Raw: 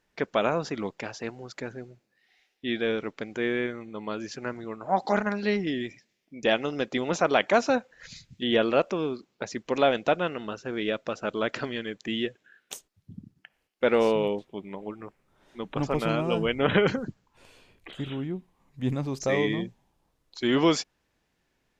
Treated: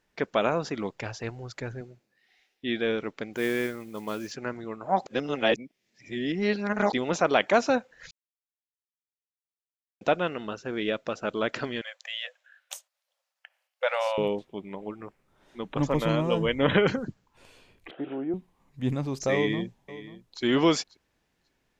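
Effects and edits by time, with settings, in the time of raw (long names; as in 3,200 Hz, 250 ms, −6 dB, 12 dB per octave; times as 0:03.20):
0:00.95–0:01.81: low shelf with overshoot 140 Hz +9 dB, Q 1.5
0:03.33–0:04.32: noise that follows the level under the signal 20 dB
0:05.06–0:06.93: reverse
0:08.11–0:10.01: silence
0:11.81–0:14.18: linear-phase brick-wall high-pass 500 Hz
0:15.78–0:16.72: EQ curve with evenly spaced ripples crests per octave 1.1, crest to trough 7 dB
0:17.91–0:18.34: loudspeaker in its box 320–2,200 Hz, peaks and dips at 320 Hz +10 dB, 490 Hz +6 dB, 720 Hz +9 dB, 1,100 Hz −4 dB, 2,000 Hz −6 dB
0:19.34–0:20.42: delay throw 540 ms, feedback 15%, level −16 dB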